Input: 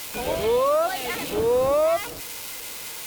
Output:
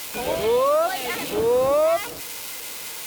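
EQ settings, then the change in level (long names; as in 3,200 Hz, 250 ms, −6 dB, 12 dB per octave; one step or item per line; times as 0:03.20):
low-shelf EQ 84 Hz −8.5 dB
+1.5 dB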